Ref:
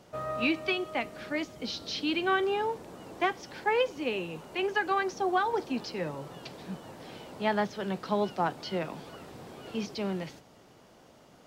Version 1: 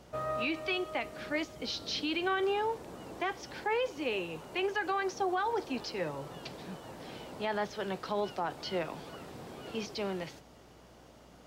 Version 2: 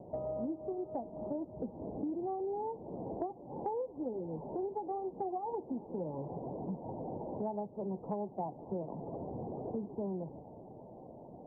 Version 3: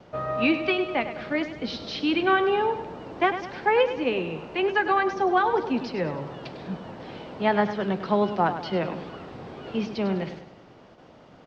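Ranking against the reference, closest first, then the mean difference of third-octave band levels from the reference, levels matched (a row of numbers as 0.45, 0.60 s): 1, 3, 2; 2.5, 4.5, 14.5 dB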